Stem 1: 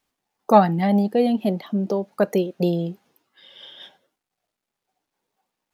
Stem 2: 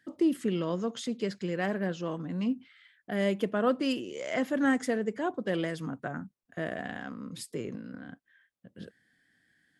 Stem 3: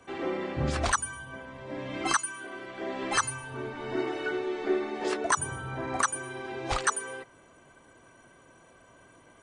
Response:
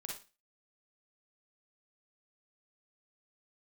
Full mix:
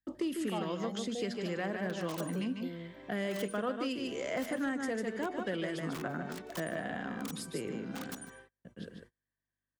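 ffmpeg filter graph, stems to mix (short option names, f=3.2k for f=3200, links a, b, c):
-filter_complex "[0:a]volume=-19dB[a];[1:a]aeval=exprs='val(0)+0.000562*(sin(2*PI*50*n/s)+sin(2*PI*2*50*n/s)/2+sin(2*PI*3*50*n/s)/3+sin(2*PI*4*50*n/s)/4+sin(2*PI*5*50*n/s)/5)':c=same,bandreject=f=119.9:t=h:w=4,bandreject=f=239.8:t=h:w=4,bandreject=f=359.7:t=h:w=4,bandreject=f=479.6:t=h:w=4,bandreject=f=599.5:t=h:w=4,bandreject=f=719.4:t=h:w=4,volume=1dB,asplit=2[b][c];[c]volume=-6.5dB[d];[2:a]highpass=200,aeval=exprs='(mod(11.2*val(0)+1,2)-1)/11.2':c=same,adelay=1250,volume=-15dB,asplit=2[e][f];[f]volume=-18dB[g];[d][g]amix=inputs=2:normalize=0,aecho=0:1:148:1[h];[a][b][e][h]amix=inputs=4:normalize=0,agate=range=-30dB:threshold=-53dB:ratio=16:detection=peak,acrossover=split=130|1100[i][j][k];[i]acompressor=threshold=-56dB:ratio=4[l];[j]acompressor=threshold=-34dB:ratio=4[m];[k]acompressor=threshold=-41dB:ratio=4[n];[l][m][n]amix=inputs=3:normalize=0,asoftclip=type=hard:threshold=-25dB"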